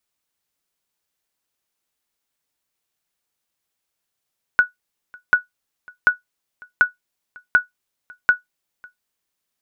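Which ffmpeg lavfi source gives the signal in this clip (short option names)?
-f lavfi -i "aevalsrc='0.596*(sin(2*PI*1470*mod(t,0.74))*exp(-6.91*mod(t,0.74)/0.14)+0.0422*sin(2*PI*1470*max(mod(t,0.74)-0.55,0))*exp(-6.91*max(mod(t,0.74)-0.55,0)/0.14))':d=4.44:s=44100"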